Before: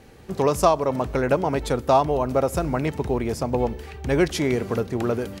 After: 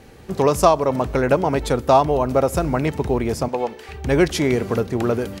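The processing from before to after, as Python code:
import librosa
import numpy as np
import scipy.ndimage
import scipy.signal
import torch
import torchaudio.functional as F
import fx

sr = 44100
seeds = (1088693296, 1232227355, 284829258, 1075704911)

y = fx.weighting(x, sr, curve='A', at=(3.48, 3.89))
y = F.gain(torch.from_numpy(y), 3.5).numpy()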